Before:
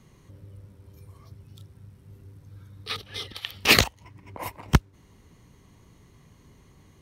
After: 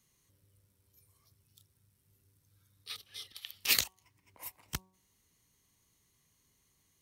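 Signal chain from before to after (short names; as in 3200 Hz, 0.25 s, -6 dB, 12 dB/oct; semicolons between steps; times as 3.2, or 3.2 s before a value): pre-emphasis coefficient 0.9; de-hum 187.2 Hz, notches 6; gain -4 dB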